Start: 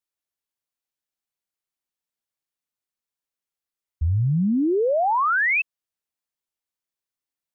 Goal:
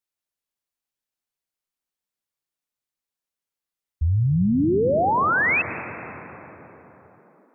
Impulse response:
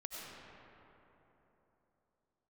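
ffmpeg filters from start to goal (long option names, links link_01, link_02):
-filter_complex "[0:a]asplit=2[link_01][link_02];[1:a]atrim=start_sample=2205,asetrate=35280,aresample=44100,lowshelf=frequency=370:gain=4.5[link_03];[link_02][link_03]afir=irnorm=-1:irlink=0,volume=-9.5dB[link_04];[link_01][link_04]amix=inputs=2:normalize=0,volume=-1.5dB"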